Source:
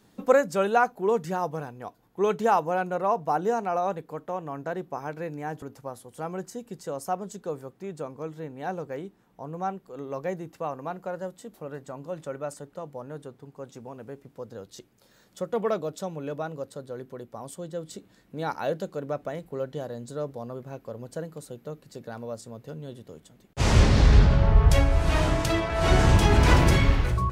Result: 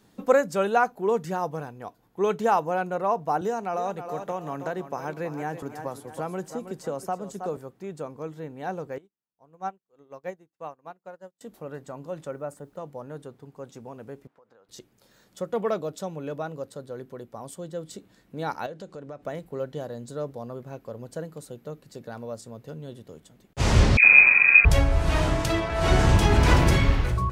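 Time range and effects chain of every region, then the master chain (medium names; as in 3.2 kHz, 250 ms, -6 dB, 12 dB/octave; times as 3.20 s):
3.41–7.57 s: thinning echo 320 ms, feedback 37%, high-pass 160 Hz, level -11 dB + three bands compressed up and down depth 70%
8.98–11.41 s: bass shelf 350 Hz -4.5 dB + upward expansion 2.5:1, over -51 dBFS
12.31–12.77 s: peaking EQ 4.8 kHz -12.5 dB 1.9 oct + word length cut 12-bit, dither none
14.27–14.69 s: band-pass filter 1.2 kHz, Q 1.1 + compression, threshold -54 dBFS
18.66–19.23 s: low-pass 9.2 kHz 24 dB/octave + compression 3:1, threshold -38 dBFS
23.97–24.65 s: phase dispersion highs, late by 96 ms, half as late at 1.2 kHz + frequency inversion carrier 2.5 kHz
whole clip: none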